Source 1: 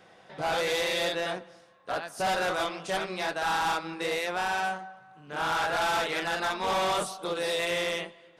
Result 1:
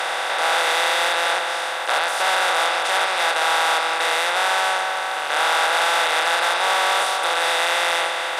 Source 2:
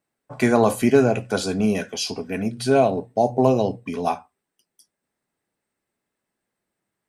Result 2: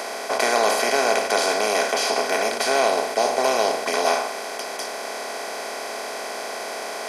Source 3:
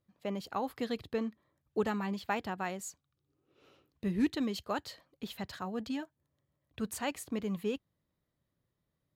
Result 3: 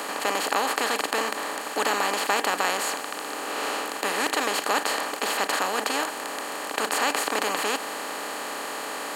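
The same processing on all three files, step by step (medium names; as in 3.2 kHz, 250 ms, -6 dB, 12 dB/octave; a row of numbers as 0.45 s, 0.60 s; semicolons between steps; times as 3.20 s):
spectral levelling over time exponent 0.2; high-pass 730 Hz 12 dB/octave; peak normalisation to -6 dBFS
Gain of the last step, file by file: +3.0 dB, -2.5 dB, +6.5 dB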